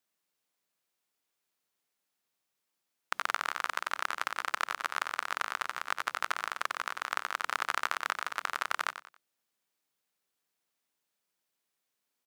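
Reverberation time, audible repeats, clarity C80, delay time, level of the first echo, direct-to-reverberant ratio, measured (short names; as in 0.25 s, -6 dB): none, 3, none, 92 ms, -11.0 dB, none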